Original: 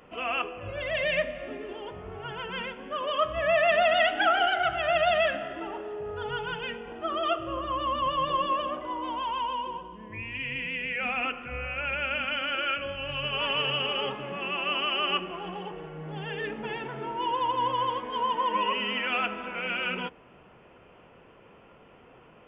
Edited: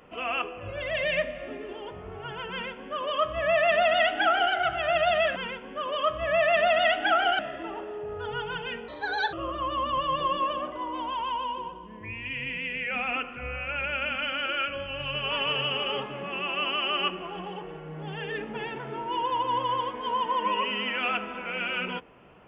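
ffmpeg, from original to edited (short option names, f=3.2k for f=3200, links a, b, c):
-filter_complex "[0:a]asplit=5[a][b][c][d][e];[a]atrim=end=5.362[f];[b]atrim=start=2.508:end=4.542[g];[c]atrim=start=5.358:end=6.854[h];[d]atrim=start=6.85:end=7.42,asetpts=PTS-STARTPTS,asetrate=56007,aresample=44100[i];[e]atrim=start=7.416[j];[f][g]acrossfade=d=0.004:c1=hsin:c2=hsin[k];[k][h]acrossfade=d=0.004:c1=hsin:c2=hsin[l];[l][i]acrossfade=d=0.004:c1=hsin:c2=hsin[m];[m][j]acrossfade=d=0.004:c1=hsin:c2=hsin"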